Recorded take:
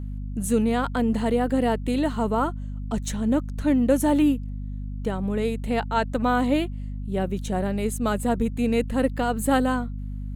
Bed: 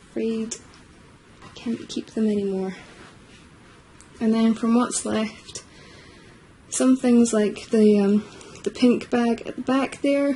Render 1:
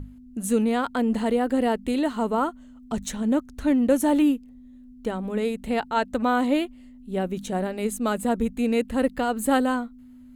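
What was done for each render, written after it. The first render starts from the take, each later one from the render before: notches 50/100/150/200 Hz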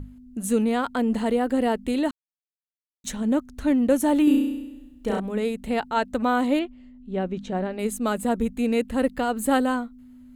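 2.11–3.04 mute; 4.24–5.2 flutter echo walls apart 5.7 m, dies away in 0.99 s; 6.59–7.79 air absorption 140 m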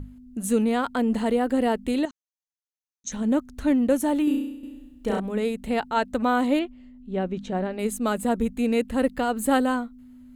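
2.05–3.12 ladder low-pass 6600 Hz, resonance 80%; 3.72–4.63 fade out, to -9 dB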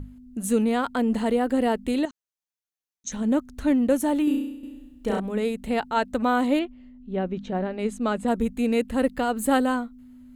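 6.65–8.28 air absorption 84 m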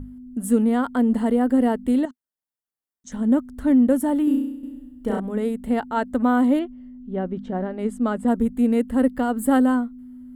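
thirty-one-band EQ 250 Hz +7 dB, 2500 Hz -12 dB, 4000 Hz -10 dB, 6300 Hz -11 dB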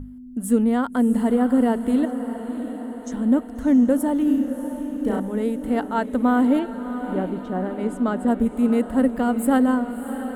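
diffused feedback echo 0.657 s, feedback 59%, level -10 dB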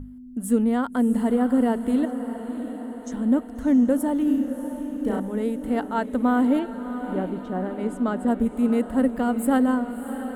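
gain -2 dB

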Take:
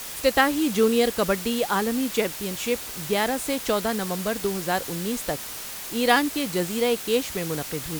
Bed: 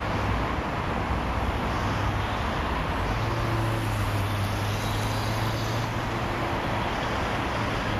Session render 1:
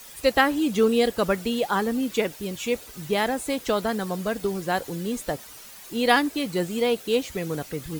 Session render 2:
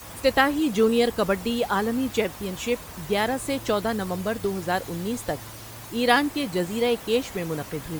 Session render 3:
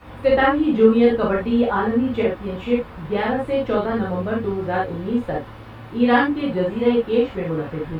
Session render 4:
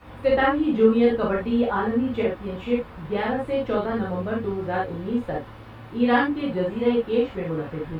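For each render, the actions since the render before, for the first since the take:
denoiser 11 dB, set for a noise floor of -36 dBFS
add bed -15.5 dB
air absorption 500 m; non-linear reverb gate 90 ms flat, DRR -4.5 dB
gain -3.5 dB

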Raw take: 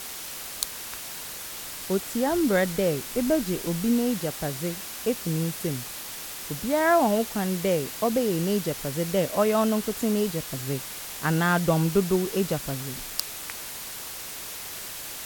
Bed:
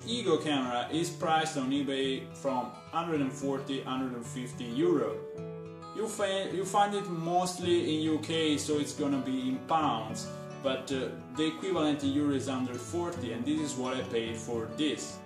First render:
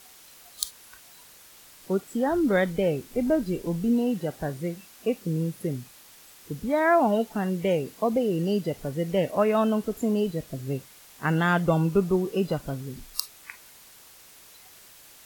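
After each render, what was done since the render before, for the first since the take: noise print and reduce 14 dB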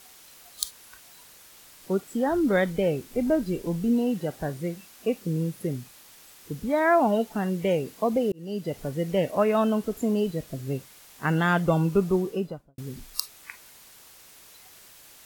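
8.32–8.78 fade in; 12.17–12.78 studio fade out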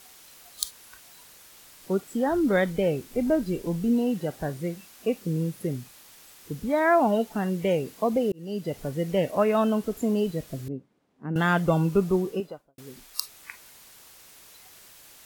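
10.68–11.36 band-pass 250 Hz, Q 1.7; 12.4–13.21 tone controls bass -14 dB, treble -1 dB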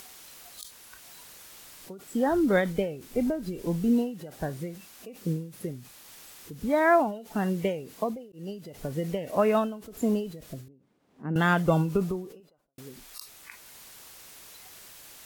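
upward compressor, threshold -43 dBFS; ending taper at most 100 dB/s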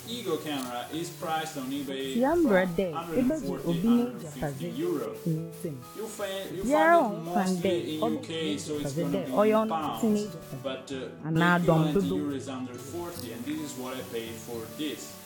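add bed -3 dB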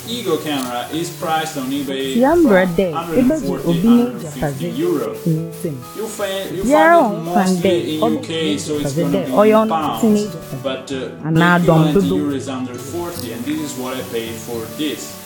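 gain +12 dB; limiter -1 dBFS, peak gain reduction 3 dB

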